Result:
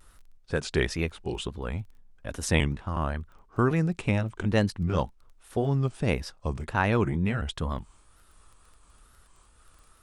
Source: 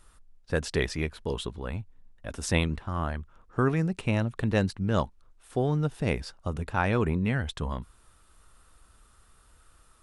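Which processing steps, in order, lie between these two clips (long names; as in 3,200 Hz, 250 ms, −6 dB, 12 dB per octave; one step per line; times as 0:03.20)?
pitch shifter gated in a rhythm −1.5 semitones, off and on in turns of 371 ms
tape wow and flutter 100 cents
surface crackle 12 per second −46 dBFS
level +1.5 dB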